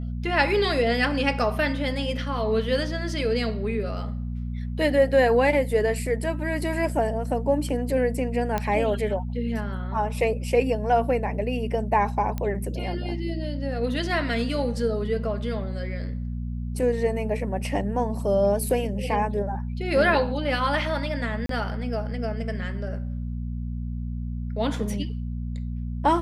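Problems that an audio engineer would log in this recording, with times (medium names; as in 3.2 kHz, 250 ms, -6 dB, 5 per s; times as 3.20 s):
hum 60 Hz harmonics 4 -30 dBFS
8.58 s: pop -12 dBFS
12.38 s: pop -16 dBFS
21.46–21.49 s: dropout 33 ms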